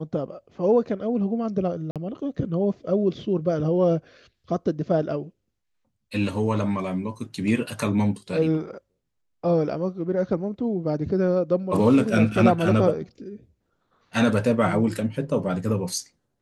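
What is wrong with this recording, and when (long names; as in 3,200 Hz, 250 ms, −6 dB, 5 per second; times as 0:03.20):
0:01.91–0:01.96: drop-out 47 ms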